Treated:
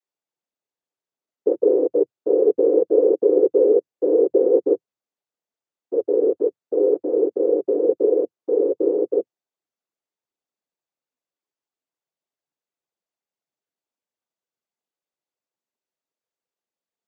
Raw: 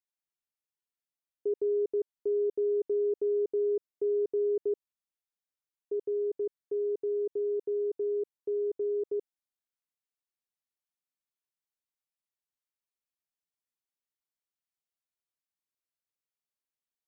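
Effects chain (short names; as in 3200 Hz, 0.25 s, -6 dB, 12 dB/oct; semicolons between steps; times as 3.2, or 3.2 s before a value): bell 480 Hz +12.5 dB 2.4 oct; noise vocoder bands 16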